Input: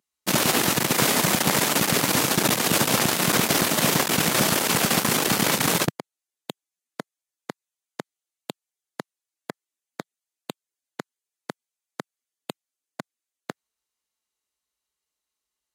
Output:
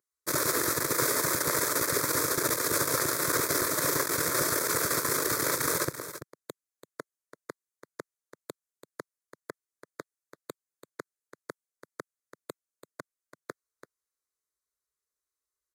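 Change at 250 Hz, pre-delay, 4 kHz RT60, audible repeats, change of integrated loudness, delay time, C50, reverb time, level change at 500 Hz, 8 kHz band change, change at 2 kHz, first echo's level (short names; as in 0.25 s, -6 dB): -10.5 dB, none, none, 1, -6.0 dB, 0.336 s, none, none, -4.5 dB, -4.5 dB, -6.5 dB, -12.0 dB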